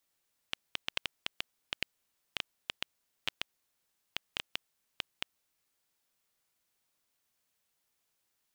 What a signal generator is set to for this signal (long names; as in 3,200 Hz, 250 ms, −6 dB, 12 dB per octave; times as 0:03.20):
Geiger counter clicks 5 per second −13.5 dBFS 4.74 s